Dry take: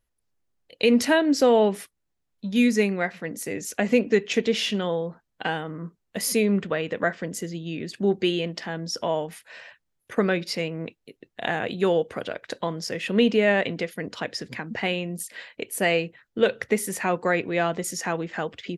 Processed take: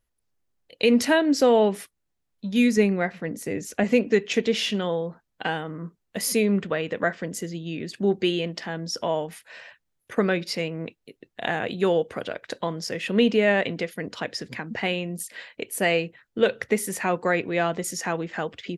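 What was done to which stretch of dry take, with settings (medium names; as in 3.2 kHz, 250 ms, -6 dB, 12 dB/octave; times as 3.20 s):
2.77–3.84 s: tilt EQ -1.5 dB/octave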